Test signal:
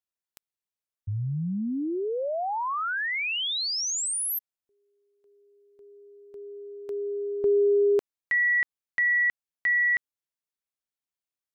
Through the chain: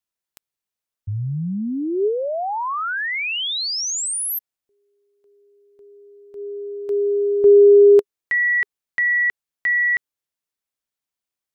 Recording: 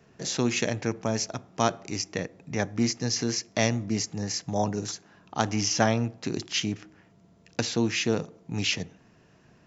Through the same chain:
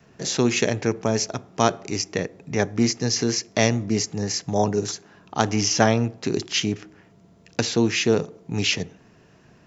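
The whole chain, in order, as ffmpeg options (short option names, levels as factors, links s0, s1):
-af "adynamicequalizer=threshold=0.00501:dfrequency=410:dqfactor=5.5:tfrequency=410:tqfactor=5.5:attack=5:release=100:ratio=0.417:range=3.5:mode=boostabove:tftype=bell,volume=1.68"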